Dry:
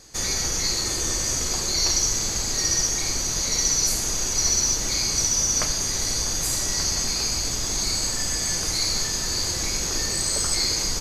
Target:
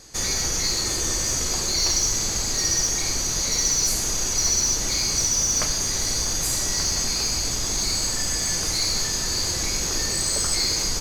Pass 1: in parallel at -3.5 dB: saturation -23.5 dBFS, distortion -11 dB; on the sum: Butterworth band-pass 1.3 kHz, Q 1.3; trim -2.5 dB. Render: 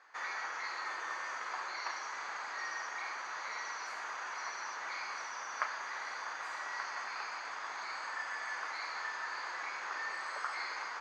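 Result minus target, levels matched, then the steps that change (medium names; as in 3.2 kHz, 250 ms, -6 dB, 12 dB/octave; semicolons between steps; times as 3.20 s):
1 kHz band +16.5 dB
remove: Butterworth band-pass 1.3 kHz, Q 1.3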